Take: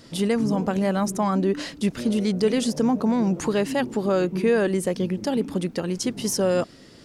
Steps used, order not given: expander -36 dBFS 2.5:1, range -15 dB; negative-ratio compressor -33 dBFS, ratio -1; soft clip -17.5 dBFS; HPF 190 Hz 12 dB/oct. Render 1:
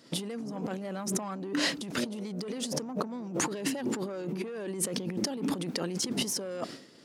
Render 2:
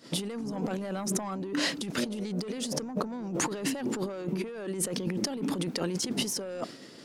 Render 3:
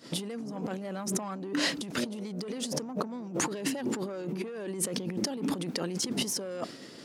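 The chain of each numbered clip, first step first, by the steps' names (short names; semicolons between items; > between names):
soft clip > expander > negative-ratio compressor > HPF; HPF > soft clip > negative-ratio compressor > expander; soft clip > negative-ratio compressor > HPF > expander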